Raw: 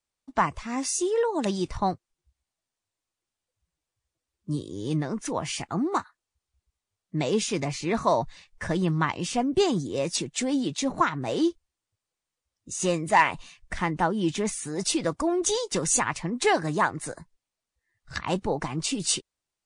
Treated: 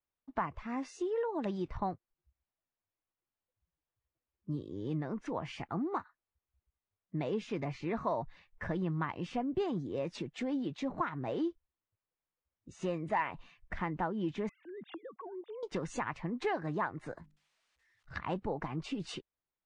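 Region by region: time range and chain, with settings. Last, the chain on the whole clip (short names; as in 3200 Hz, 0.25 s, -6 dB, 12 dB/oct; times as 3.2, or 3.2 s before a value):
14.49–15.63 sine-wave speech + compressor, threshold -37 dBFS
17.17–18.14 switching spikes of -47 dBFS + notches 50/100/150/200/250/300 Hz
whole clip: LPF 2200 Hz 12 dB/oct; compressor 2:1, threshold -28 dBFS; gain -5.5 dB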